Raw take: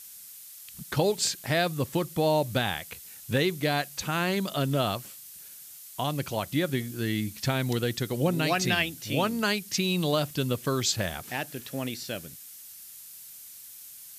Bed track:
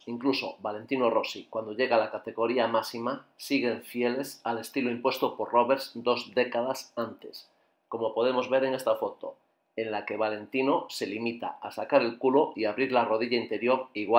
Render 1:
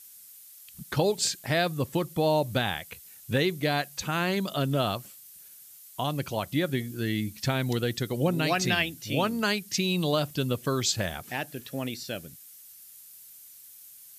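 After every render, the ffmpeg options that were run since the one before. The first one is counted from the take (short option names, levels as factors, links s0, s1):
-af "afftdn=nr=6:nf=-47"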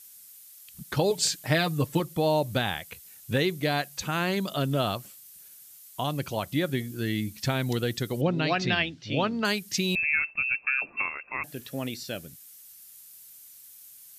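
-filter_complex "[0:a]asettb=1/sr,asplit=3[s0][s1][s2];[s0]atrim=end=1.104[s3];[s1]atrim=start=1.1:end=2,asetpts=PTS-STARTPTS,afade=t=in:d=0.004:c=qsin,afade=t=out:st=0.896:d=0.004:c=qsin,aecho=1:1:6.6:0.65,atrim=end_sample=39690[s4];[s2]atrim=start=1.996[s5];[s3][s4]acrossfade=d=0.004:c1=hsin:c2=qsin[s6];[s6][s5]acrossfade=d=0.004:c1=qsin:c2=hsin,asettb=1/sr,asplit=3[s7][s8][s9];[s7]atrim=end=8.214[s10];[s8]atrim=start=8.21:end=9.45,asetpts=PTS-STARTPTS,afade=t=in:d=0.004:c=qsin,afade=t=out:st=1.236:d=0.004:c=qsin,lowpass=f=4800:w=0.5412,lowpass=f=4800:w=1.3066[s11];[s9]atrim=start=9.446[s12];[s10][s11]acrossfade=d=0.004:c1=hsin:c2=qsin[s13];[s13][s12]acrossfade=d=0.004:c1=qsin:c2=hsin,asettb=1/sr,asplit=3[s14][s15][s16];[s14]atrim=end=9.954[s17];[s15]atrim=start=9.95:end=11.44,asetpts=PTS-STARTPTS,afade=t=in:d=0.004:c=qsin,afade=t=out:st=1.486:d=0.004:c=qsin,lowpass=f=2400:t=q:w=0.5098,lowpass=f=2400:t=q:w=0.6013,lowpass=f=2400:t=q:w=0.9,lowpass=f=2400:t=q:w=2.563,afreqshift=-2800[s18];[s16]atrim=start=11.436[s19];[s17][s18]acrossfade=d=0.004:c1=hsin:c2=qsin[s20];[s20][s19]acrossfade=d=0.004:c1=qsin:c2=hsin"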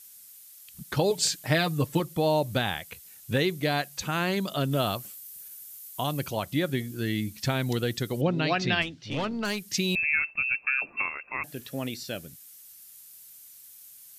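-filter_complex "[0:a]asettb=1/sr,asplit=3[s0][s1][s2];[s0]atrim=end=4.724[s3];[s1]atrim=start=4.72:end=6.31,asetpts=PTS-STARTPTS,afade=t=in:d=0.004:c=qsin,afade=t=out:st=1.586:d=0.004:c=qsin,highshelf=f=11000:g=9.5[s4];[s2]atrim=start=6.306[s5];[s3][s4]acrossfade=d=0.004:c1=hsin:c2=qsin[s6];[s6][s5]acrossfade=d=0.004:c1=qsin:c2=hsin,asplit=3[s7][s8][s9];[s7]afade=t=out:st=8.81:d=0.02[s10];[s8]aeval=exprs='(tanh(15.8*val(0)+0.35)-tanh(0.35))/15.8':c=same,afade=t=in:st=8.81:d=0.02,afade=t=out:st=9.7:d=0.02[s11];[s9]afade=t=in:st=9.7:d=0.02[s12];[s10][s11][s12]amix=inputs=3:normalize=0"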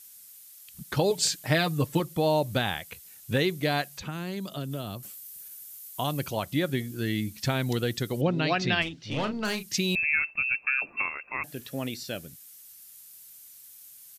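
-filter_complex "[0:a]asettb=1/sr,asplit=3[s0][s1][s2];[s0]atrim=end=3.984[s3];[s1]atrim=start=3.98:end=5.03,asetpts=PTS-STARTPTS,afade=t=in:d=0.004:c=qsin,afade=t=out:st=1.046:d=0.004:c=qsin,acrossover=split=380|4200[s4][s5][s6];[s4]acompressor=threshold=0.0224:ratio=4[s7];[s5]acompressor=threshold=0.00891:ratio=4[s8];[s6]acompressor=threshold=0.00398:ratio=4[s9];[s7][s8][s9]amix=inputs=3:normalize=0[s10];[s2]atrim=start=5.026[s11];[s3][s10]acrossfade=d=0.004:c1=hsin:c2=qsin[s12];[s12][s11]acrossfade=d=0.004:c1=qsin:c2=hsin,asplit=3[s13][s14][s15];[s13]afade=t=out:st=8.85:d=0.02[s16];[s14]asplit=2[s17][s18];[s18]adelay=37,volume=0.355[s19];[s17][s19]amix=inputs=2:normalize=0,afade=t=in:st=8.85:d=0.02,afade=t=out:st=9.66:d=0.02[s20];[s15]afade=t=in:st=9.66:d=0.02[s21];[s16][s20][s21]amix=inputs=3:normalize=0"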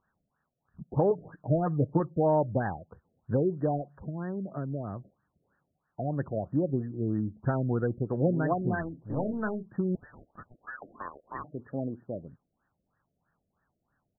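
-filter_complex "[0:a]acrossover=split=920[s0][s1];[s1]asoftclip=type=hard:threshold=0.0335[s2];[s0][s2]amix=inputs=2:normalize=0,afftfilt=real='re*lt(b*sr/1024,680*pow(1900/680,0.5+0.5*sin(2*PI*3.1*pts/sr)))':imag='im*lt(b*sr/1024,680*pow(1900/680,0.5+0.5*sin(2*PI*3.1*pts/sr)))':win_size=1024:overlap=0.75"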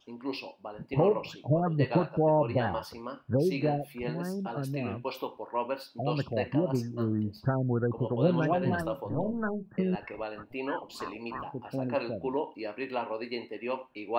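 -filter_complex "[1:a]volume=0.376[s0];[0:a][s0]amix=inputs=2:normalize=0"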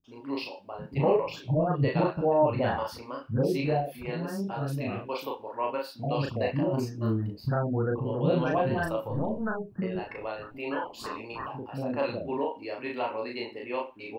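-filter_complex "[0:a]asplit=2[s0][s1];[s1]adelay=36,volume=0.794[s2];[s0][s2]amix=inputs=2:normalize=0,acrossover=split=260[s3][s4];[s4]adelay=40[s5];[s3][s5]amix=inputs=2:normalize=0"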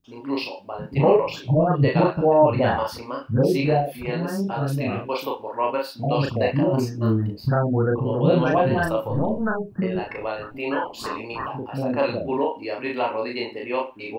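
-af "volume=2.24"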